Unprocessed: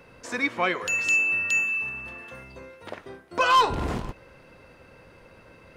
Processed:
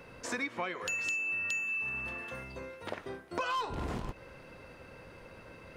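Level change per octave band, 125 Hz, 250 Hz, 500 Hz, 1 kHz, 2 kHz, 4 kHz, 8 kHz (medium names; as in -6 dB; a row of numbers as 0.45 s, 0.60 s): -7.0 dB, -7.5 dB, -8.5 dB, -13.5 dB, -9.5 dB, -12.0 dB, -8.5 dB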